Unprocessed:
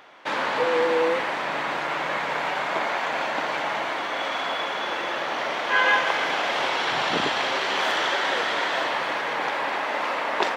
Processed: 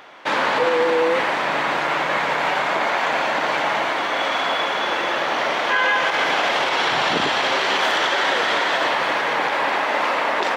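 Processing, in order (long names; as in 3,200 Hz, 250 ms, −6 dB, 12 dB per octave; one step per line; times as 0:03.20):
brickwall limiter −16 dBFS, peak gain reduction 8.5 dB
level +6 dB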